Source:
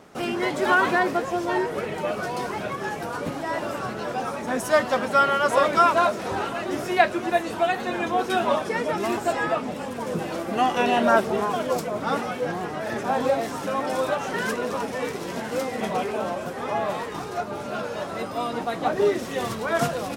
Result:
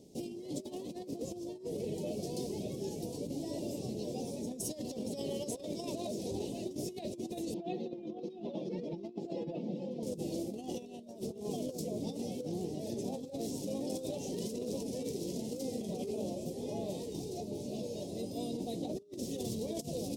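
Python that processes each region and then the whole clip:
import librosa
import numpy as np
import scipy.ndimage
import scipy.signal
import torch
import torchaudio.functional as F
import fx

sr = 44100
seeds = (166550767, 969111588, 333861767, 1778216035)

y = fx.chain(x, sr, fx.highpass(hz=150.0, slope=24),
    fx.air_absorb(metres=270.0),
    fx.comb(ms=5.8, depth=0.65), at=(7.54, 10.03))
y = scipy.signal.sosfilt(scipy.signal.cheby1(2, 1.0, [380.0, 5000.0], 'bandstop', fs=sr, output='sos'), y)
y = fx.over_compress(y, sr, threshold_db=-32.0, ratio=-0.5)
y = y * librosa.db_to_amplitude(-6.0)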